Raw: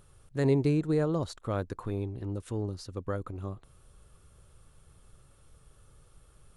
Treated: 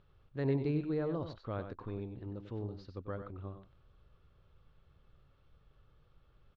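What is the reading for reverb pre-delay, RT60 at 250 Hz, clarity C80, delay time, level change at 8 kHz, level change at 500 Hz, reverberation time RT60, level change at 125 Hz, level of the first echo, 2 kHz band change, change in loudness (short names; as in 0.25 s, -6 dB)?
none, none, none, 95 ms, under -25 dB, -7.0 dB, none, -7.5 dB, -9.0 dB, -7.0 dB, -7.0 dB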